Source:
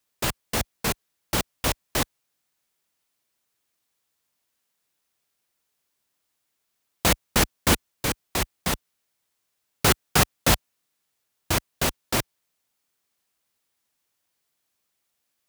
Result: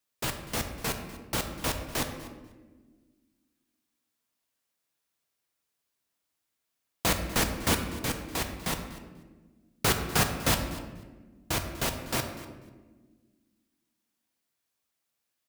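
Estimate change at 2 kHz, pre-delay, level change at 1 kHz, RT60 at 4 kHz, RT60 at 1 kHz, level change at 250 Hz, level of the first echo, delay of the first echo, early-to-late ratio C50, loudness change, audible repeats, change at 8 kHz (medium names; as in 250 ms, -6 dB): -5.0 dB, 4 ms, -4.5 dB, 0.95 s, 1.1 s, -4.0 dB, -18.0 dB, 245 ms, 7.5 dB, -5.0 dB, 2, -5.5 dB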